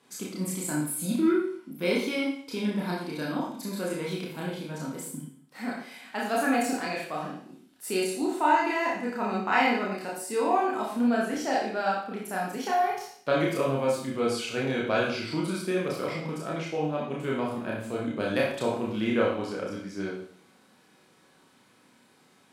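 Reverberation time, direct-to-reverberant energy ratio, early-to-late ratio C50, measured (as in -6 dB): 0.55 s, -4.5 dB, 2.5 dB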